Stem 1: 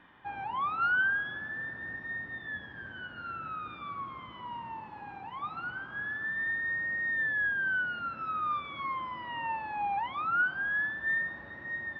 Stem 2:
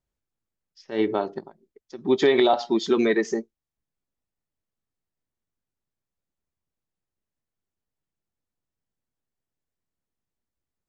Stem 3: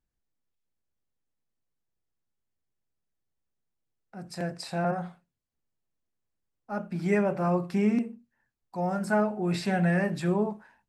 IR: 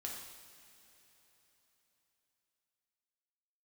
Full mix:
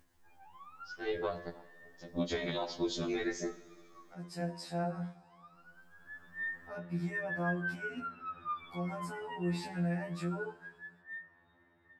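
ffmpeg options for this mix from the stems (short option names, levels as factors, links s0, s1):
-filter_complex "[0:a]volume=0.447,afade=t=in:st=5.95:d=0.52:silence=0.237137,afade=t=out:st=9.51:d=0.36:silence=0.316228[s0];[1:a]highshelf=f=4100:g=10,acompressor=threshold=0.1:ratio=16,tremolo=f=210:d=0.974,adelay=100,volume=0.531,asplit=2[s1][s2];[s2]volume=0.422[s3];[2:a]alimiter=level_in=1.06:limit=0.0631:level=0:latency=1:release=158,volume=0.944,acompressor=mode=upward:threshold=0.00708:ratio=2.5,volume=0.501,asplit=2[s4][s5];[s5]volume=0.299[s6];[3:a]atrim=start_sample=2205[s7];[s3][s6]amix=inputs=2:normalize=0[s8];[s8][s7]afir=irnorm=-1:irlink=0[s9];[s0][s1][s4][s9]amix=inputs=4:normalize=0,afftfilt=real='re*2*eq(mod(b,4),0)':imag='im*2*eq(mod(b,4),0)':win_size=2048:overlap=0.75"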